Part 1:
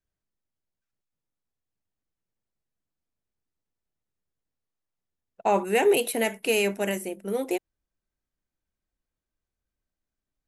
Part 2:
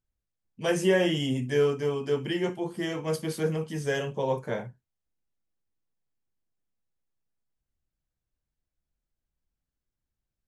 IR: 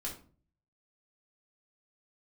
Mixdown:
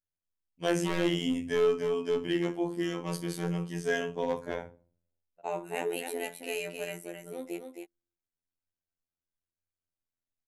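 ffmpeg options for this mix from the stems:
-filter_complex "[0:a]volume=-9dB,asplit=3[link_01][link_02][link_03];[link_02]volume=-15dB[link_04];[link_03]volume=-5dB[link_05];[1:a]agate=range=-33dB:threshold=-35dB:ratio=3:detection=peak,asoftclip=type=hard:threshold=-21dB,volume=-0.5dB,asplit=2[link_06][link_07];[link_07]volume=-8dB[link_08];[2:a]atrim=start_sample=2205[link_09];[link_04][link_08]amix=inputs=2:normalize=0[link_10];[link_10][link_09]afir=irnorm=-1:irlink=0[link_11];[link_05]aecho=0:1:266:1[link_12];[link_01][link_06][link_11][link_12]amix=inputs=4:normalize=0,afftfilt=real='hypot(re,im)*cos(PI*b)':imag='0':win_size=2048:overlap=0.75"

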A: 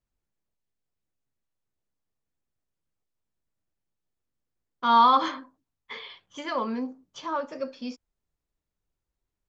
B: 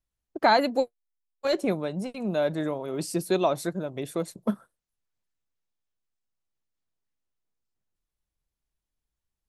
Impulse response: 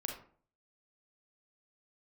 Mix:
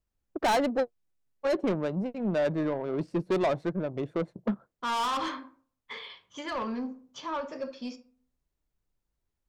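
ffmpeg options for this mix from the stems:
-filter_complex "[0:a]asoftclip=type=tanh:threshold=-25dB,volume=-3.5dB,asplit=2[link_01][link_02];[link_02]volume=-8dB[link_03];[1:a]adynamicsmooth=sensitivity=2.5:basefreq=1000,volume=2dB[link_04];[2:a]atrim=start_sample=2205[link_05];[link_03][link_05]afir=irnorm=-1:irlink=0[link_06];[link_01][link_04][link_06]amix=inputs=3:normalize=0,asoftclip=type=tanh:threshold=-21dB"

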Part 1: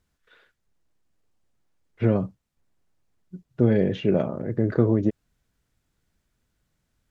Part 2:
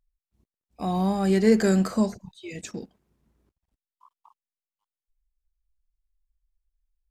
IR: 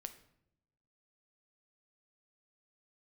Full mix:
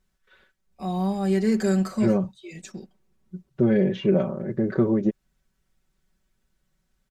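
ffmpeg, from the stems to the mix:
-filter_complex "[0:a]volume=-2.5dB[link_01];[1:a]volume=-6dB[link_02];[link_01][link_02]amix=inputs=2:normalize=0,aecho=1:1:5.3:0.84"

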